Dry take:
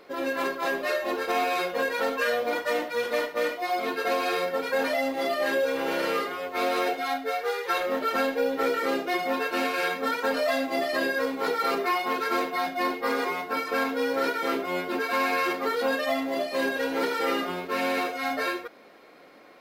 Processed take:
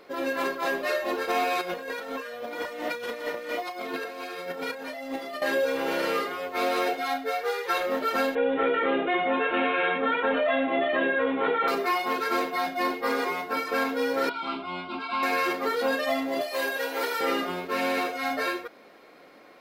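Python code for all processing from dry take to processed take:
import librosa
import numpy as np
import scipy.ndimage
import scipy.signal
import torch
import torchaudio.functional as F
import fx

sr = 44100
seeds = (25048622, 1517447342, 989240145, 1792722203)

y = fx.chain(x, sr, fx.notch(hz=4500.0, q=25.0),
    fx.over_compress(threshold_db=-35.0, ratio=-1.0),
    fx.doubler(ms=34.0, db=-11.0), at=(1.61, 5.42))
y = fx.chain(y, sr, fx.steep_lowpass(hz=3600.0, slope=96),
    fx.env_flatten(amount_pct=50), at=(8.35, 11.68))
y = fx.chain(y, sr, fx.lowpass(hz=6400.0, slope=24),
    fx.fixed_phaser(hz=1800.0, stages=6), at=(14.29, 15.23))
y = fx.chain(y, sr, fx.highpass(hz=480.0, slope=12),
    fx.high_shelf(hz=11000.0, db=10.5), at=(16.41, 17.21))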